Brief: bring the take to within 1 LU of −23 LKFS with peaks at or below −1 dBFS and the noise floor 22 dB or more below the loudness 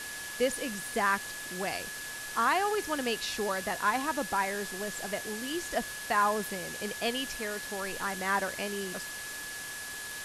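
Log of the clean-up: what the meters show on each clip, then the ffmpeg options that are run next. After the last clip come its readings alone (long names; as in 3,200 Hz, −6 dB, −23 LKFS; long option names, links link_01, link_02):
interfering tone 1,700 Hz; level of the tone −41 dBFS; background noise floor −40 dBFS; target noise floor −54 dBFS; integrated loudness −32.0 LKFS; sample peak −15.0 dBFS; target loudness −23.0 LKFS
→ -af "bandreject=frequency=1700:width=30"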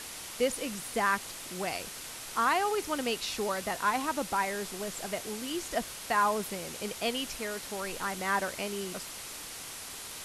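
interfering tone none found; background noise floor −43 dBFS; target noise floor −55 dBFS
→ -af "afftdn=noise_reduction=12:noise_floor=-43"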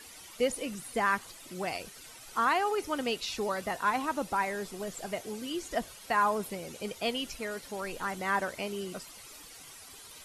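background noise floor −50 dBFS; target noise floor −55 dBFS
→ -af "afftdn=noise_reduction=6:noise_floor=-50"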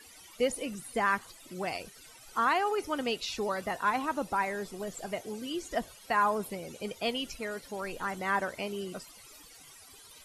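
background noise floor −54 dBFS; target noise floor −55 dBFS
→ -af "afftdn=noise_reduction=6:noise_floor=-54"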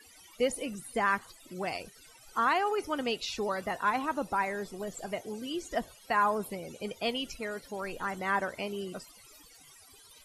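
background noise floor −57 dBFS; integrated loudness −32.5 LKFS; sample peak −15.5 dBFS; target loudness −23.0 LKFS
→ -af "volume=9.5dB"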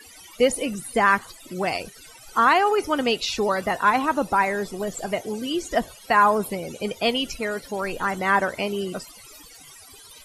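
integrated loudness −23.0 LKFS; sample peak −6.0 dBFS; background noise floor −47 dBFS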